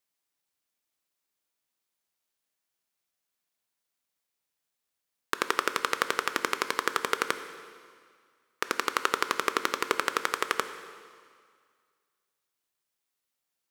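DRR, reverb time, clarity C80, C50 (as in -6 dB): 9.5 dB, 2.0 s, 11.5 dB, 10.5 dB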